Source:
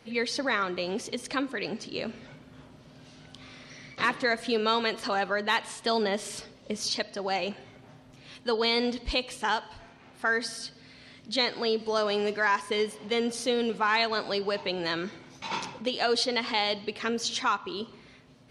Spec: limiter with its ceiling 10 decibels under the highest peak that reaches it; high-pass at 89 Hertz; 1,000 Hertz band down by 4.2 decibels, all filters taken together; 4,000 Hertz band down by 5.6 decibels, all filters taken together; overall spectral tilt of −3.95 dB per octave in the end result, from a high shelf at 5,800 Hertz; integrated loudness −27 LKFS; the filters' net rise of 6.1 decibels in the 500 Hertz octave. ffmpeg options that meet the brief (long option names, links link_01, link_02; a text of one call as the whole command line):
ffmpeg -i in.wav -af "highpass=89,equalizer=frequency=500:width_type=o:gain=9,equalizer=frequency=1000:width_type=o:gain=-8.5,equalizer=frequency=4000:width_type=o:gain=-4.5,highshelf=frequency=5800:gain=-5.5,volume=4dB,alimiter=limit=-16.5dB:level=0:latency=1" out.wav